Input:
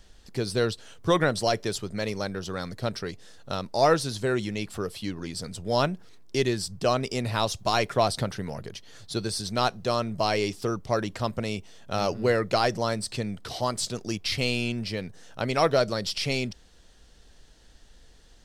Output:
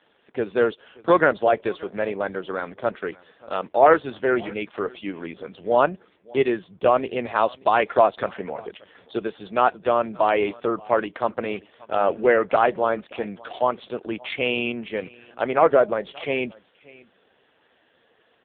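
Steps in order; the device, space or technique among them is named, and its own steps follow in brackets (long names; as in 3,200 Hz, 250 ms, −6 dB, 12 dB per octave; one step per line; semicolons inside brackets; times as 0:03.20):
0:15.50–0:16.23: dynamic equaliser 4,000 Hz, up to −6 dB, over −43 dBFS, Q 0.71
satellite phone (band-pass filter 340–3,000 Hz; single-tap delay 580 ms −23 dB; level +8 dB; AMR narrowband 5.15 kbit/s 8,000 Hz)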